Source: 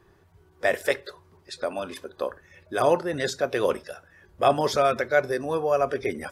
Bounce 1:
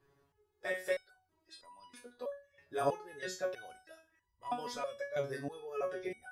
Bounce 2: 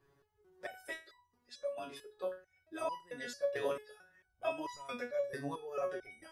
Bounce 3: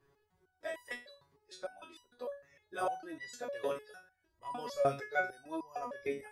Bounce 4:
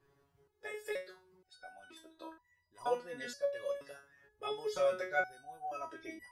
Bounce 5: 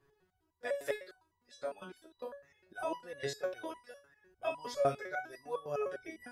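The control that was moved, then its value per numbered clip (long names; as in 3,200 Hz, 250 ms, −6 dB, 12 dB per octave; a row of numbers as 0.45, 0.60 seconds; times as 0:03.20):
step-sequenced resonator, speed: 3.1, 4.5, 6.6, 2.1, 9.9 Hertz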